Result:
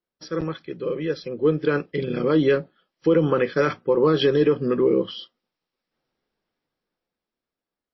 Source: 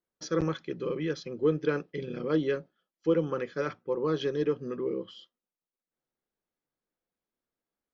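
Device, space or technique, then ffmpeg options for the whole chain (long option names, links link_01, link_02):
low-bitrate web radio: -filter_complex "[0:a]asettb=1/sr,asplit=3[link_01][link_02][link_03];[link_01]atrim=end=0.804[link_04];[link_02]atrim=start=0.8:end=1.41,asetpts=PTS-STARTPTS,afade=type=in:duration=0.004:curve=qsin,afade=type=out:start_time=0.606:duration=0.004:curve=qsin,equalizer=frequency=510:width=2.8:gain=5[link_05];[link_03]atrim=start=1.406[link_06];[link_04][link_05]acrossfade=duration=0.004:curve1=hsin:curve2=qsin[link_07];[link_07][link_06]acrossfade=duration=0.004:curve1=qsin:curve2=hsin,dynaudnorm=framelen=340:gausssize=11:maxgain=13.5dB,alimiter=limit=-11dB:level=0:latency=1:release=53,volume=1.5dB" -ar 16000 -c:a libmp3lame -b:a 24k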